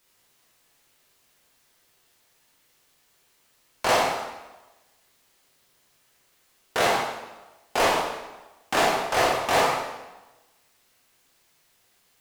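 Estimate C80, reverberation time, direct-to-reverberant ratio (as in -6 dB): 4.0 dB, 1.1 s, -3.5 dB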